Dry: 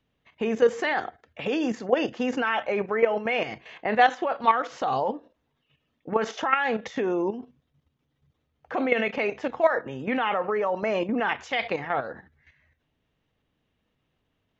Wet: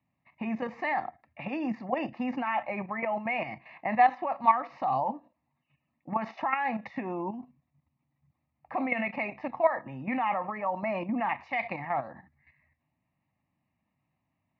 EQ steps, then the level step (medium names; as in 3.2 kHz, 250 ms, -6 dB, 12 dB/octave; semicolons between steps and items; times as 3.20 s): high-pass 120 Hz 12 dB/octave; distance through air 400 m; static phaser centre 2.2 kHz, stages 8; +1.5 dB